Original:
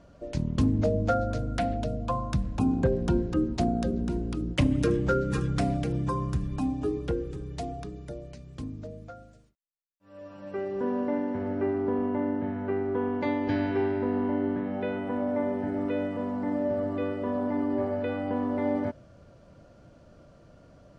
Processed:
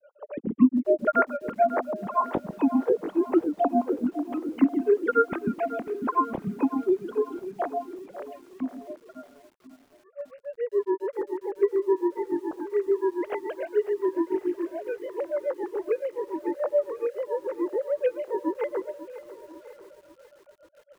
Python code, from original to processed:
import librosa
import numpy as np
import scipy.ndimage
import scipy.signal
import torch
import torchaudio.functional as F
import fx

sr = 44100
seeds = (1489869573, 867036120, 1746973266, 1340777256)

p1 = fx.sine_speech(x, sr)
p2 = fx.high_shelf(p1, sr, hz=2700.0, db=-7.0)
p3 = fx.granulator(p2, sr, seeds[0], grain_ms=123.0, per_s=7.0, spray_ms=12.0, spread_st=0)
p4 = p3 + fx.echo_single(p3, sr, ms=1038, db=-20.5, dry=0)
p5 = fx.echo_crushed(p4, sr, ms=545, feedback_pct=55, bits=9, wet_db=-15)
y = F.gain(torch.from_numpy(p5), 7.0).numpy()